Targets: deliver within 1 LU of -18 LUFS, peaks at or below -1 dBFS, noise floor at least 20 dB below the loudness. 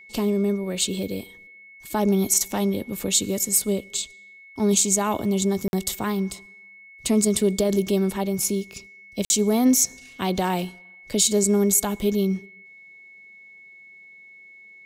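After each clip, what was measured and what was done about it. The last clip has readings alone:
dropouts 2; longest dropout 51 ms; steady tone 2.2 kHz; tone level -45 dBFS; loudness -22.5 LUFS; peak level -6.0 dBFS; loudness target -18.0 LUFS
-> interpolate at 5.68/9.25 s, 51 ms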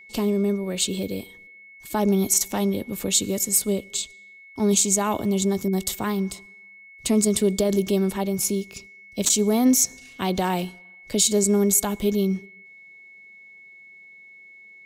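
dropouts 0; steady tone 2.2 kHz; tone level -45 dBFS
-> band-stop 2.2 kHz, Q 30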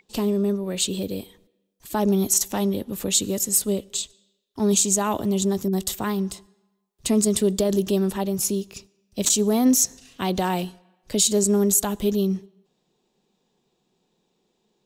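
steady tone not found; loudness -22.5 LUFS; peak level -6.0 dBFS; loudness target -18.0 LUFS
-> trim +4.5 dB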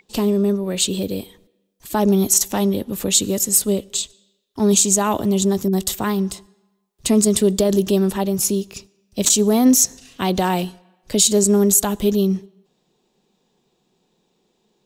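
loudness -18.0 LUFS; peak level -1.5 dBFS; noise floor -68 dBFS

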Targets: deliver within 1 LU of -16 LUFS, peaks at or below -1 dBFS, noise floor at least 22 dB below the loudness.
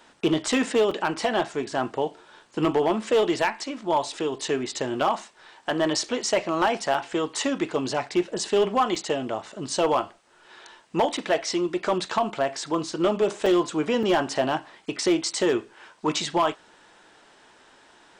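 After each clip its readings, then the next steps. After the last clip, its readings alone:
clipped samples 0.6%; clipping level -14.5 dBFS; dropouts 6; longest dropout 4.1 ms; loudness -25.5 LUFS; peak level -14.5 dBFS; loudness target -16.0 LUFS
-> clip repair -14.5 dBFS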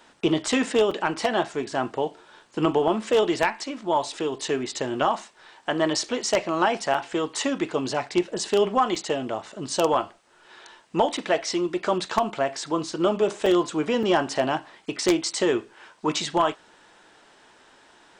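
clipped samples 0.0%; dropouts 6; longest dropout 4.1 ms
-> interpolate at 0.91/6.94/8.95/11.17/13.46/14.03 s, 4.1 ms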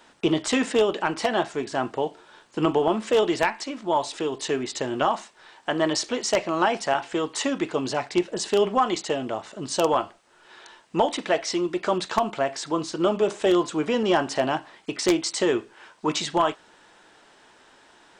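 dropouts 0; loudness -25.0 LUFS; peak level -5.5 dBFS; loudness target -16.0 LUFS
-> trim +9 dB; peak limiter -1 dBFS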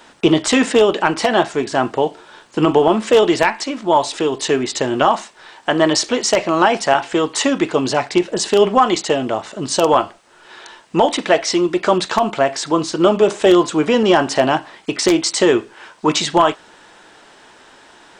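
loudness -16.5 LUFS; peak level -1.0 dBFS; noise floor -47 dBFS

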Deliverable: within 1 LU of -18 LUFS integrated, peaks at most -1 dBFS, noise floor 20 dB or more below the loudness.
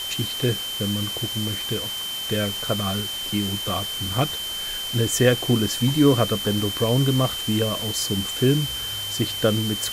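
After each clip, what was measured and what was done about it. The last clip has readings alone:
steady tone 3.1 kHz; tone level -28 dBFS; noise floor -30 dBFS; noise floor target -43 dBFS; loudness -22.5 LUFS; peak level -6.0 dBFS; loudness target -18.0 LUFS
-> band-stop 3.1 kHz, Q 30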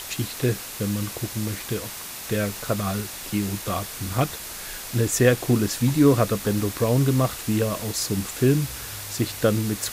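steady tone not found; noise floor -36 dBFS; noise floor target -44 dBFS
-> noise reduction 8 dB, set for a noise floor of -36 dBFS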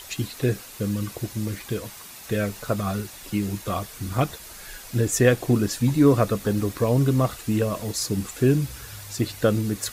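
noise floor -42 dBFS; noise floor target -45 dBFS
-> noise reduction 6 dB, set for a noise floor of -42 dBFS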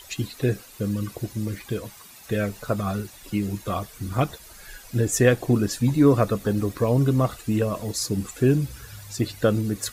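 noise floor -47 dBFS; loudness -24.5 LUFS; peak level -6.5 dBFS; loudness target -18.0 LUFS
-> trim +6.5 dB; peak limiter -1 dBFS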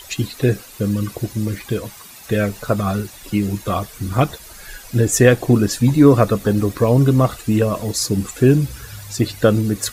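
loudness -18.0 LUFS; peak level -1.0 dBFS; noise floor -40 dBFS

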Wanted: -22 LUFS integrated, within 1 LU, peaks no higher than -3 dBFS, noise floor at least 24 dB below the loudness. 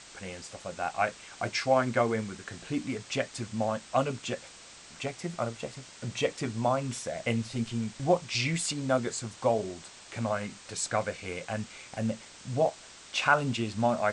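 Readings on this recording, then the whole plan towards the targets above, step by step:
noise floor -51 dBFS; noise floor target -56 dBFS; loudness -31.5 LUFS; peak level -8.5 dBFS; loudness target -22.0 LUFS
-> noise print and reduce 6 dB; trim +9.5 dB; peak limiter -3 dBFS

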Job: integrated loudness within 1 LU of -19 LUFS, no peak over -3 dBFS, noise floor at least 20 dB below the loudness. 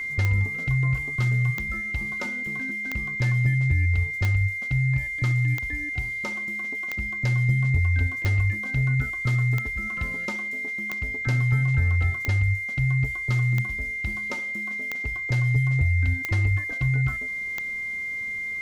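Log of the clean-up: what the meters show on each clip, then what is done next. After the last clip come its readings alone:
clicks found 14; steady tone 2.1 kHz; tone level -28 dBFS; loudness -25.0 LUFS; peak level -9.5 dBFS; loudness target -19.0 LUFS
-> de-click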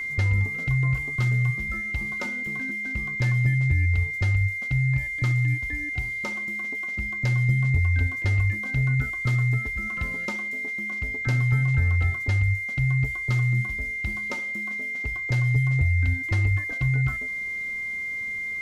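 clicks found 0; steady tone 2.1 kHz; tone level -28 dBFS
-> band-stop 2.1 kHz, Q 30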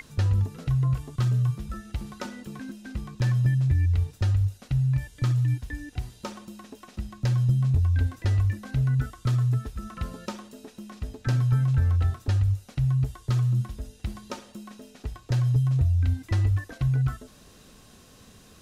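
steady tone not found; loudness -25.5 LUFS; peak level -14.0 dBFS; loudness target -19.0 LUFS
-> trim +6.5 dB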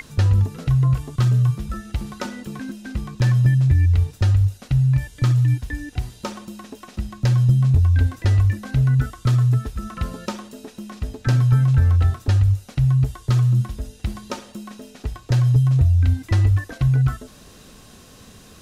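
loudness -19.5 LUFS; peak level -7.5 dBFS; noise floor -47 dBFS

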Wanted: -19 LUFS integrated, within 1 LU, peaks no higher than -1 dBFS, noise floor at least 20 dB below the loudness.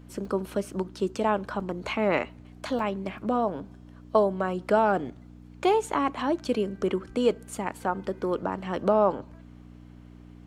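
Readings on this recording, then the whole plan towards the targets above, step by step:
dropouts 3; longest dropout 2.4 ms; hum 60 Hz; highest harmonic 300 Hz; hum level -46 dBFS; loudness -27.5 LUFS; peak level -8.5 dBFS; loudness target -19.0 LUFS
-> interpolate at 0.25/1.60/2.79 s, 2.4 ms; de-hum 60 Hz, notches 5; trim +8.5 dB; peak limiter -1 dBFS

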